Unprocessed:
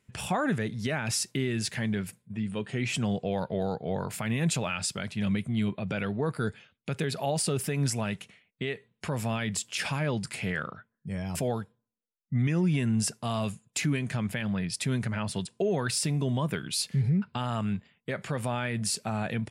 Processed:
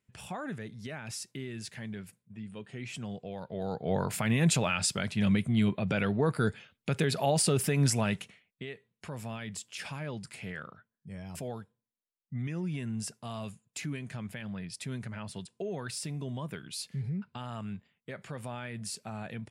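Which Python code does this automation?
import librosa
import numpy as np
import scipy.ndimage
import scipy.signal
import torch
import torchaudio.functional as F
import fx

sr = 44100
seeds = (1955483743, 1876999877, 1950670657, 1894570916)

y = fx.gain(x, sr, db=fx.line((3.41, -10.5), (3.94, 2.0), (8.19, 2.0), (8.66, -9.0)))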